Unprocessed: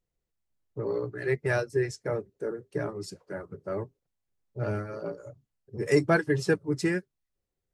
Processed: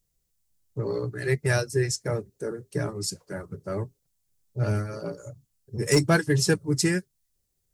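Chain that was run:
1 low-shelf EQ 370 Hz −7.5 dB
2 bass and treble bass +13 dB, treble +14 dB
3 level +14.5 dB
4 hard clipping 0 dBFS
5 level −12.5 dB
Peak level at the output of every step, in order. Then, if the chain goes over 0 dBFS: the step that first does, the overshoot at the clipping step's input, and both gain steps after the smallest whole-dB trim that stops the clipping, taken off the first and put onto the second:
−13.0, −9.0, +5.5, 0.0, −12.5 dBFS
step 3, 5.5 dB
step 3 +8.5 dB, step 5 −6.5 dB

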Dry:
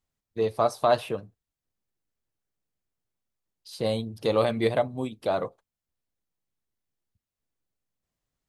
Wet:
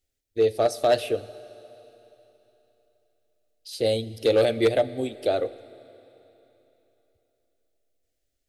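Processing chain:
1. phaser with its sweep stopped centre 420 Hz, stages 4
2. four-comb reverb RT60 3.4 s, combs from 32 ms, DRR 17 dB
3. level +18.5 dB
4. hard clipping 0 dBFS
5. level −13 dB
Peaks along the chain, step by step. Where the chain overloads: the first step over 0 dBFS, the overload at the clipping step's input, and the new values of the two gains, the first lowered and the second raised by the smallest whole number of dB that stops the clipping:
−13.0, −12.5, +6.0, 0.0, −13.0 dBFS
step 3, 6.0 dB
step 3 +12.5 dB, step 5 −7 dB

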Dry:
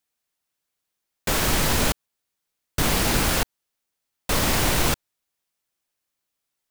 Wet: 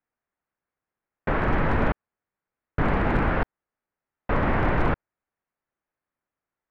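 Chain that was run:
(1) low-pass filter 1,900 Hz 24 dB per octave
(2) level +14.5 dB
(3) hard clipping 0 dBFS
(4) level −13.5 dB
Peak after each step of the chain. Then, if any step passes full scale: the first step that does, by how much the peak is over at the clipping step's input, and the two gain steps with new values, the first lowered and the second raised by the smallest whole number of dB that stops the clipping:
−11.0, +3.5, 0.0, −13.5 dBFS
step 2, 3.5 dB
step 2 +10.5 dB, step 4 −9.5 dB

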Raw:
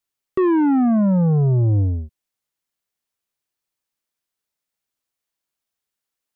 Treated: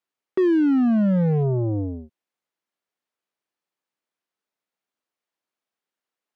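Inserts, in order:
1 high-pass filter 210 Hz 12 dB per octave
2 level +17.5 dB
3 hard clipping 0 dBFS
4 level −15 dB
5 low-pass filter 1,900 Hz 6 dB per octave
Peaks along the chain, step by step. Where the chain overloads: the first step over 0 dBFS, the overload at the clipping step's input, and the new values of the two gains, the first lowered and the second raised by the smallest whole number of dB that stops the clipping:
−11.0, +6.5, 0.0, −15.0, −15.0 dBFS
step 2, 6.5 dB
step 2 +10.5 dB, step 4 −8 dB

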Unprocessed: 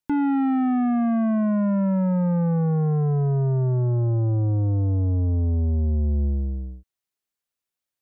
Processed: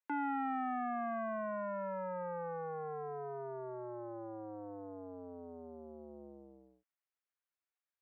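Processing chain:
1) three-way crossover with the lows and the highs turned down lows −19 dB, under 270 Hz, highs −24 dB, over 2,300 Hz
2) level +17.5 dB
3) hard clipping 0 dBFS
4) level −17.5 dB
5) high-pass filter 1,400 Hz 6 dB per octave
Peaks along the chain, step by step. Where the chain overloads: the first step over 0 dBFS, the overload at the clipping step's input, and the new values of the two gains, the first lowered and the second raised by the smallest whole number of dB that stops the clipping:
−20.5, −3.0, −3.0, −20.5, −28.5 dBFS
no step passes full scale

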